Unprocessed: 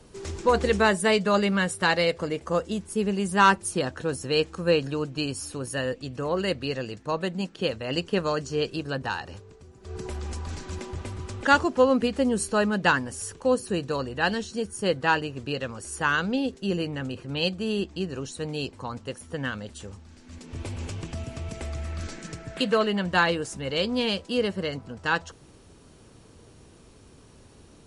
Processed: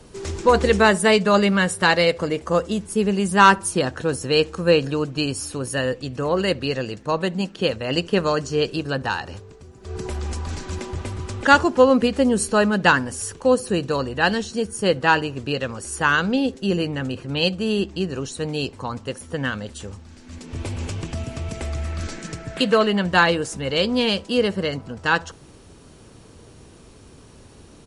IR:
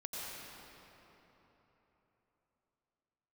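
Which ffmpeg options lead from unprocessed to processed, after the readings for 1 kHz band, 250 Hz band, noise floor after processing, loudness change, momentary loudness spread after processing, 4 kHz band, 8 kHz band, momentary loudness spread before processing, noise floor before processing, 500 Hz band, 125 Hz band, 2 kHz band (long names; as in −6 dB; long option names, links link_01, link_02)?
+5.5 dB, +5.5 dB, −47 dBFS, +5.5 dB, 15 LU, +5.5 dB, +5.5 dB, 14 LU, −52 dBFS, +5.5 dB, +5.5 dB, +5.5 dB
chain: -filter_complex "[0:a]asplit=2[link_01][link_02];[link_02]adelay=69,lowpass=frequency=1300:poles=1,volume=-23dB,asplit=2[link_03][link_04];[link_04]adelay=69,lowpass=frequency=1300:poles=1,volume=0.47,asplit=2[link_05][link_06];[link_06]adelay=69,lowpass=frequency=1300:poles=1,volume=0.47[link_07];[link_01][link_03][link_05][link_07]amix=inputs=4:normalize=0,volume=5.5dB"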